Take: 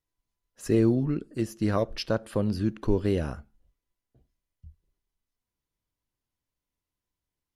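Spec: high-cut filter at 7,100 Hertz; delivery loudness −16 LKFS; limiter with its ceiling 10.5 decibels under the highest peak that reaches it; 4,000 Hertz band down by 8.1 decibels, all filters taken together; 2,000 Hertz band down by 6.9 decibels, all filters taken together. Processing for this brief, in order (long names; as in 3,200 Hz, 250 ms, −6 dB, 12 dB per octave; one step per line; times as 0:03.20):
low-pass filter 7,100 Hz
parametric band 2,000 Hz −8 dB
parametric band 4,000 Hz −8.5 dB
level +17.5 dB
brickwall limiter −5 dBFS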